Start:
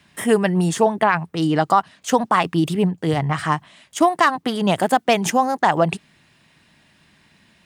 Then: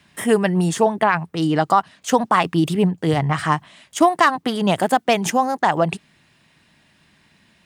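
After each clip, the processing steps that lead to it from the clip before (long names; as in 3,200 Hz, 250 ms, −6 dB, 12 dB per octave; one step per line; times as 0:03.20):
speech leveller 2 s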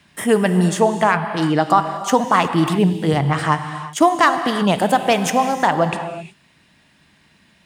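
reverb whose tail is shaped and stops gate 390 ms flat, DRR 8 dB
level +1 dB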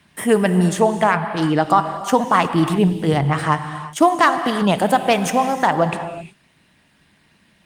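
Opus 32 kbit/s 48,000 Hz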